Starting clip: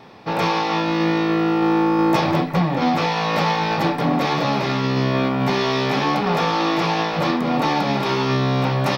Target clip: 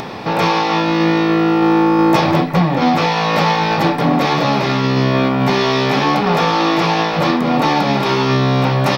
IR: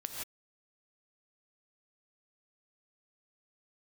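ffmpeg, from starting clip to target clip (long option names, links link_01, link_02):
-af "acompressor=mode=upward:threshold=-22dB:ratio=2.5,volume=5dB"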